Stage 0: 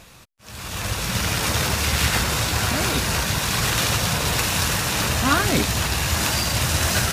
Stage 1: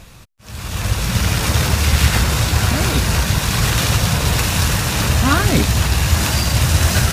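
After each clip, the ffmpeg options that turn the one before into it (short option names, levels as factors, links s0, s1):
-af "lowshelf=f=160:g=10,volume=1.26"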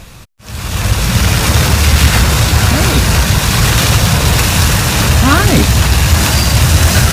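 -af "aeval=exprs='0.891*sin(PI/2*1.41*val(0)/0.891)':c=same"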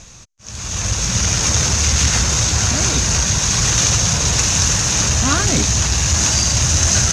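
-af "lowpass=f=6400:t=q:w=7.5,volume=0.355"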